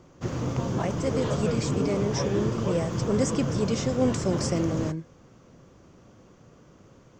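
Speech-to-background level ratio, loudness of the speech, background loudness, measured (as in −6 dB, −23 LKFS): 0.5 dB, −29.0 LKFS, −29.5 LKFS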